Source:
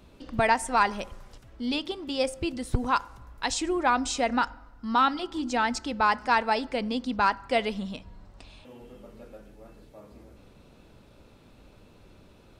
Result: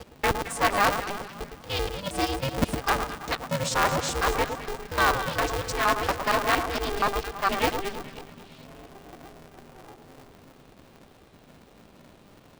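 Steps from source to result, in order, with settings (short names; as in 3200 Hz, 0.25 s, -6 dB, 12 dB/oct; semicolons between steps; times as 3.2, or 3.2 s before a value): local time reversal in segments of 0.234 s; echo with dull and thin repeats by turns 0.109 s, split 1200 Hz, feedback 64%, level -7 dB; polarity switched at an audio rate 200 Hz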